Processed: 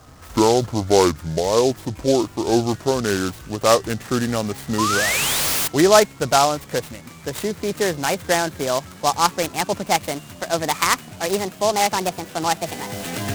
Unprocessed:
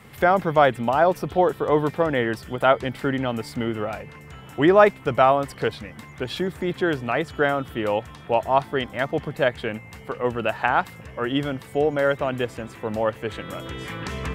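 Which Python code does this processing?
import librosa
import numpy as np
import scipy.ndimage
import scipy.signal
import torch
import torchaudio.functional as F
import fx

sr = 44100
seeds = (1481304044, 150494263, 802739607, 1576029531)

p1 = fx.speed_glide(x, sr, from_pct=59, to_pct=156)
p2 = fx.rider(p1, sr, range_db=5, speed_s=2.0)
p3 = p1 + (p2 * 10.0 ** (-0.5 / 20.0))
p4 = fx.spec_paint(p3, sr, seeds[0], shape='rise', start_s=4.78, length_s=0.9, low_hz=960.0, high_hz=7900.0, level_db=-16.0)
p5 = fx.noise_mod_delay(p4, sr, seeds[1], noise_hz=4800.0, depth_ms=0.065)
y = p5 * 10.0 ** (-4.5 / 20.0)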